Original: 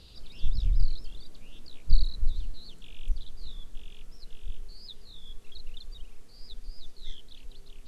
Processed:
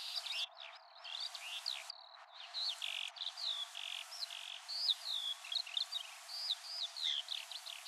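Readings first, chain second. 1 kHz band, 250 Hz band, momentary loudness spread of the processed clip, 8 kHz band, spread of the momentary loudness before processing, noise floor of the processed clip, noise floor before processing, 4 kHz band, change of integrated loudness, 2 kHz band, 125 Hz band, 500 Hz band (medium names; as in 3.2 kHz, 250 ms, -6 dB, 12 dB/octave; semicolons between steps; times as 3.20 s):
+12.0 dB, under -40 dB, 10 LU, no reading, 20 LU, -58 dBFS, -49 dBFS, +10.5 dB, -1.5 dB, +12.0 dB, under -40 dB, -1.5 dB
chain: low-pass that closes with the level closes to 900 Hz, closed at -14.5 dBFS; brick-wall FIR high-pass 640 Hz; trim +12.5 dB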